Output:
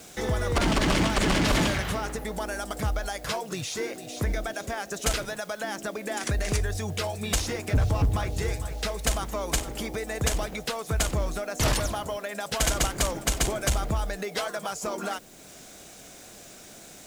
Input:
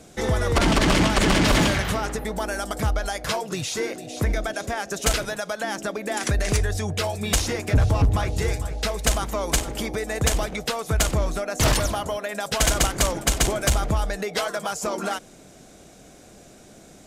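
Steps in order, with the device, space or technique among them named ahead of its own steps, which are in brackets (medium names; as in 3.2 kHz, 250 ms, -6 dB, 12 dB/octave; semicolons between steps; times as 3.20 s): noise-reduction cassette on a plain deck (tape noise reduction on one side only encoder only; wow and flutter 26 cents; white noise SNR 28 dB); trim -4.5 dB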